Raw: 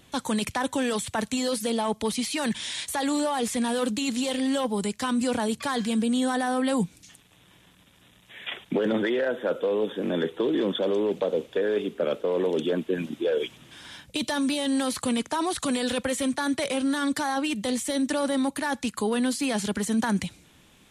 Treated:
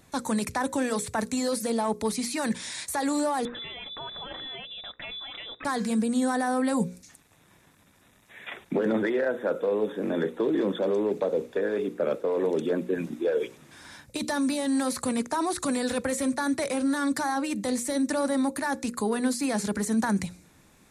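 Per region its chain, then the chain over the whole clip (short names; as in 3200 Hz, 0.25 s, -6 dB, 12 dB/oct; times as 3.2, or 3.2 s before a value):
3.45–5.65 compressor 3:1, threshold -29 dBFS + inverted band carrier 3700 Hz
whole clip: bell 3100 Hz -13.5 dB 0.43 oct; notches 60/120/180/240/300/360/420/480/540 Hz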